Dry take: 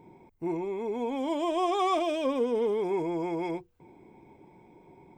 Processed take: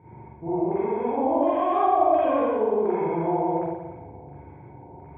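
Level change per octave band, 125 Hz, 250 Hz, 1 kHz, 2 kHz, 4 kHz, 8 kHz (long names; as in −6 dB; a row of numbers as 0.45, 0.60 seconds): +9.0 dB, +4.5 dB, +8.5 dB, +1.5 dB, below −10 dB, can't be measured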